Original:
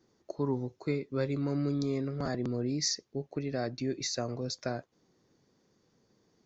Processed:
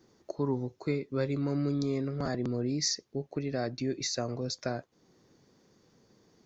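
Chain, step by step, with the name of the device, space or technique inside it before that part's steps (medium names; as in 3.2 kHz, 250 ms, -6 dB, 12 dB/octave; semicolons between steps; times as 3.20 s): parallel compression (in parallel at -0.5 dB: compression, threshold -50 dBFS, peak gain reduction 22 dB)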